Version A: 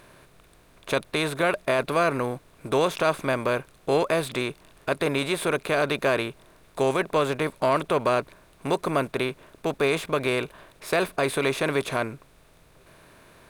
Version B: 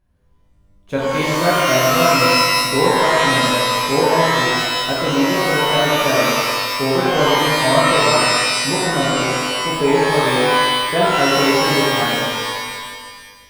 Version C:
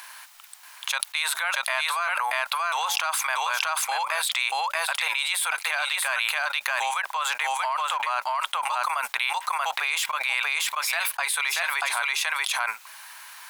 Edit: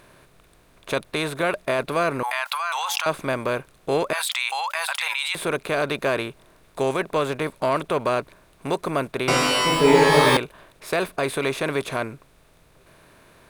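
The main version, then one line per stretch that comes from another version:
A
2.23–3.06 from C
4.13–5.35 from C
9.28–10.37 from B

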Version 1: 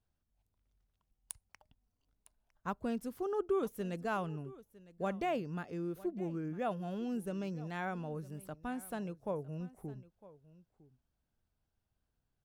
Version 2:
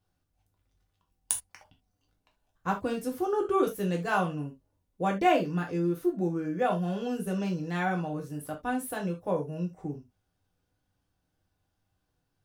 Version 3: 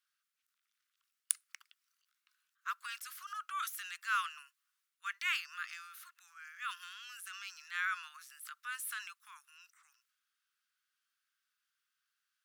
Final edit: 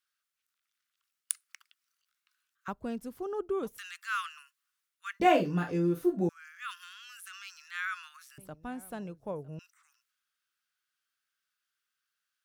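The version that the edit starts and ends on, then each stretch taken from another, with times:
3
2.68–3.78 from 1
5.2–6.29 from 2
8.38–9.59 from 1

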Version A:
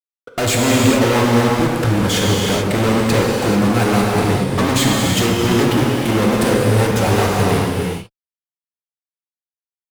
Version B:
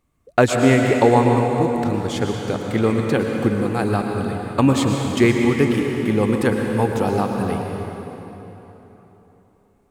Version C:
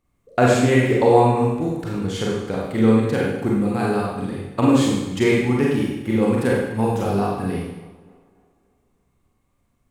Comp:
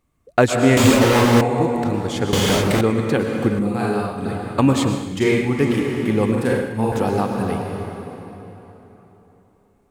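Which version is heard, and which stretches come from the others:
B
0.77–1.41 from A
2.33–2.81 from A
3.59–4.25 from C
4.99–5.57 from C, crossfade 0.24 s
6.32–6.92 from C

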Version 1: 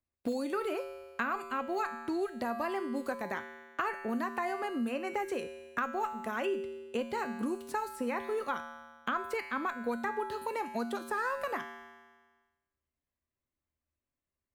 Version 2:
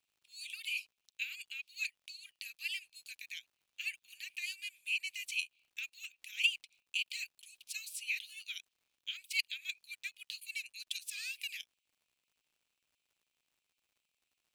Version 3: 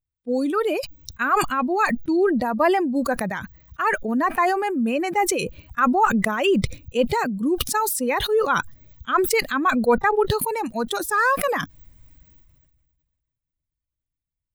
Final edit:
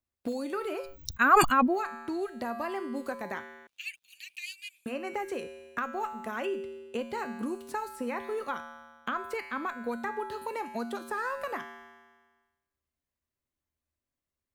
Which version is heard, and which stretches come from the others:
1
0.91–1.72 from 3, crossfade 0.16 s
3.67–4.86 from 2

